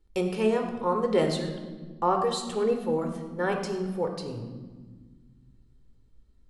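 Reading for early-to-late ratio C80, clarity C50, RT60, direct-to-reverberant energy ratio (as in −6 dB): 8.0 dB, 6.0 dB, 1.5 s, 4.5 dB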